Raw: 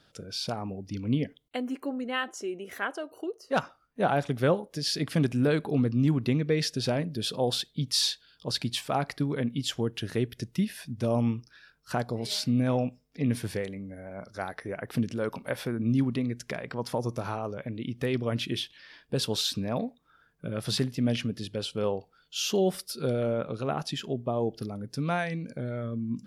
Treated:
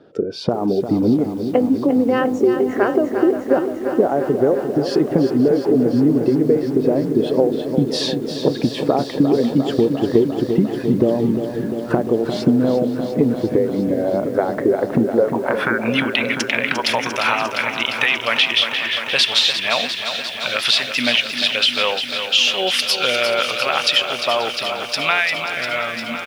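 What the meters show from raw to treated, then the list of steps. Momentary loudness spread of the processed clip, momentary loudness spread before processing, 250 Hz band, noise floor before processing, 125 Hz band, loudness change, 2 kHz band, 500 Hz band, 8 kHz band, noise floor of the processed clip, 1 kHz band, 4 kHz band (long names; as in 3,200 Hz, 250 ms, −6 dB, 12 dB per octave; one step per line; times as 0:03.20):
6 LU, 10 LU, +11.5 dB, −65 dBFS, +3.5 dB, +12.5 dB, +17.0 dB, +13.0 dB, +6.5 dB, −28 dBFS, +11.5 dB, +14.5 dB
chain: band-pass filter sweep 390 Hz → 2,600 Hz, 0:15.07–0:15.99
downward compressor 16 to 1, threshold −44 dBFS, peak gain reduction 20.5 dB
noise reduction from a noise print of the clip's start 7 dB
repeating echo 534 ms, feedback 55%, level −17 dB
boost into a limiter +33.5 dB
feedback echo at a low word length 350 ms, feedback 80%, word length 7 bits, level −8.5 dB
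level −2 dB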